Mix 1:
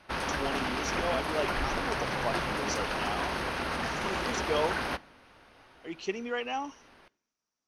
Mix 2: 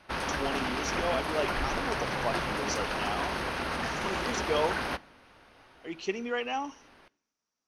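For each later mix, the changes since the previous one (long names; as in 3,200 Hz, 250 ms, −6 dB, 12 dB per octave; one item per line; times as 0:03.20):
speech: send +7.0 dB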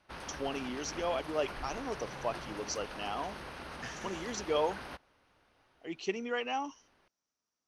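background −10.0 dB
reverb: off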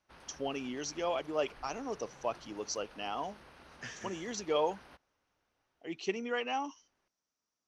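background −11.5 dB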